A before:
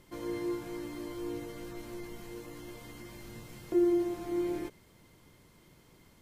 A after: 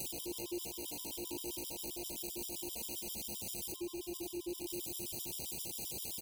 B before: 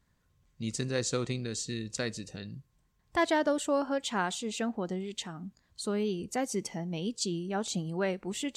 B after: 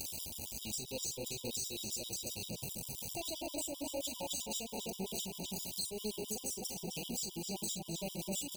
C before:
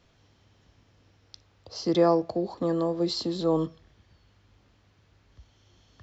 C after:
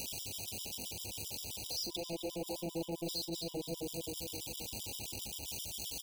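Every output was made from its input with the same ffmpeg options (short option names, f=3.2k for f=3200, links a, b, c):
-filter_complex "[0:a]aeval=exprs='val(0)+0.5*0.0237*sgn(val(0))':c=same,highpass=f=89:p=1,highshelf=f=5k:g=7.5,asplit=2[a][b];[b]adelay=257,lowpass=f=2k:p=1,volume=-3.5dB,asplit=2[c][d];[d]adelay=257,lowpass=f=2k:p=1,volume=0.53,asplit=2[e][f];[f]adelay=257,lowpass=f=2k:p=1,volume=0.53,asplit=2[g][h];[h]adelay=257,lowpass=f=2k:p=1,volume=0.53,asplit=2[i][j];[j]adelay=257,lowpass=f=2k:p=1,volume=0.53,asplit=2[k][l];[l]adelay=257,lowpass=f=2k:p=1,volume=0.53,asplit=2[m][n];[n]adelay=257,lowpass=f=2k:p=1,volume=0.53[o];[a][c][e][g][i][k][m][o]amix=inputs=8:normalize=0,asoftclip=type=tanh:threshold=-26.5dB,asuperstop=centerf=1500:order=12:qfactor=1,highshelf=f=2.1k:g=10.5,acompressor=threshold=-30dB:ratio=5,bandreject=f=60:t=h:w=6,bandreject=f=120:t=h:w=6,asplit=2[p][q];[q]adelay=42,volume=-6dB[r];[p][r]amix=inputs=2:normalize=0,aeval=exprs='val(0)+0.00251*(sin(2*PI*60*n/s)+sin(2*PI*2*60*n/s)/2+sin(2*PI*3*60*n/s)/3+sin(2*PI*4*60*n/s)/4+sin(2*PI*5*60*n/s)/5)':c=same,afftfilt=real='re*gt(sin(2*PI*7.6*pts/sr)*(1-2*mod(floor(b*sr/1024/970),2)),0)':imag='im*gt(sin(2*PI*7.6*pts/sr)*(1-2*mod(floor(b*sr/1024/970),2)),0)':win_size=1024:overlap=0.75,volume=-5.5dB"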